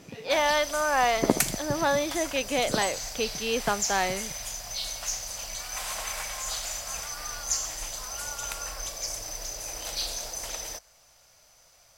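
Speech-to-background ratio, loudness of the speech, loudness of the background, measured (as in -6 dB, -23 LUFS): 5.0 dB, -27.0 LUFS, -32.0 LUFS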